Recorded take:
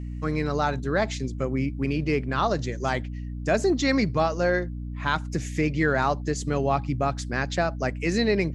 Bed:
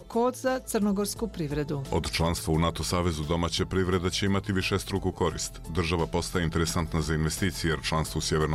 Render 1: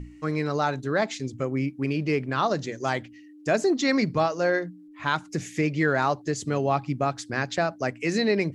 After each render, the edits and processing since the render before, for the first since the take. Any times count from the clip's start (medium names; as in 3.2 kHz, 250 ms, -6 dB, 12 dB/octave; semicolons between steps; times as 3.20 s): hum notches 60/120/180/240 Hz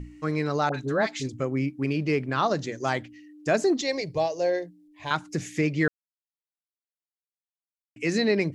0.69–1.29 s: phase dispersion highs, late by 54 ms, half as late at 1.2 kHz; 3.81–5.11 s: static phaser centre 550 Hz, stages 4; 5.88–7.96 s: mute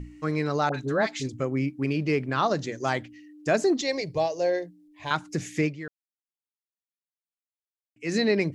5.64–8.14 s: dip -14 dB, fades 0.13 s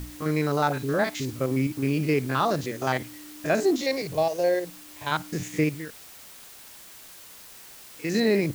spectrogram pixelated in time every 50 ms; in parallel at -10.5 dB: word length cut 6-bit, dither triangular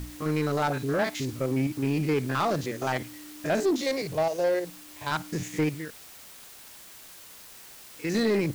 self-modulated delay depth 0.11 ms; saturation -17.5 dBFS, distortion -16 dB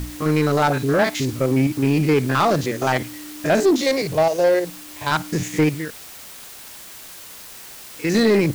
trim +8.5 dB